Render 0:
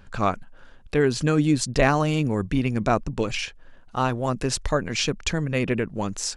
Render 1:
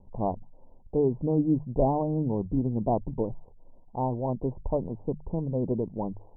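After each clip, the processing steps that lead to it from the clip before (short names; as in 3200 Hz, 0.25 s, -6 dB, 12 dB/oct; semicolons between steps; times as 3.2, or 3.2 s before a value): steep low-pass 970 Hz 96 dB/oct; notches 50/100/150 Hz; gain -3.5 dB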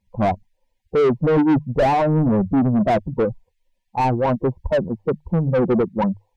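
per-bin expansion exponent 2; overdrive pedal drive 33 dB, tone 1000 Hz, clips at -14.5 dBFS; gain +6 dB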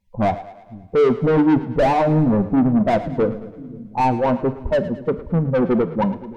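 split-band echo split 340 Hz, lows 0.523 s, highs 0.109 s, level -15 dB; on a send at -11 dB: reverb, pre-delay 3 ms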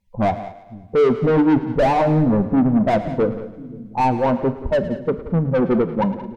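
echo 0.178 s -15 dB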